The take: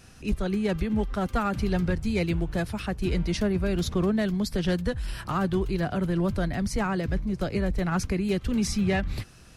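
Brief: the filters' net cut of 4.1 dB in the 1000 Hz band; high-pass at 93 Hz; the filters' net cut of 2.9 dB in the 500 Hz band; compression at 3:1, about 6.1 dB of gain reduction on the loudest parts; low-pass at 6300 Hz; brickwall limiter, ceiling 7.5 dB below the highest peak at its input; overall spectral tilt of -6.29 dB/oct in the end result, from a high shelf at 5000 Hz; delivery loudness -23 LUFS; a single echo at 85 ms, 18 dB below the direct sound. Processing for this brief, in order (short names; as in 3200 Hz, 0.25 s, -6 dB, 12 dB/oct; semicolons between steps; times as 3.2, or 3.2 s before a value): HPF 93 Hz; LPF 6300 Hz; bell 500 Hz -3 dB; bell 1000 Hz -4.5 dB; high shelf 5000 Hz -6.5 dB; compressor 3:1, threshold -31 dBFS; limiter -28.5 dBFS; echo 85 ms -18 dB; gain +14 dB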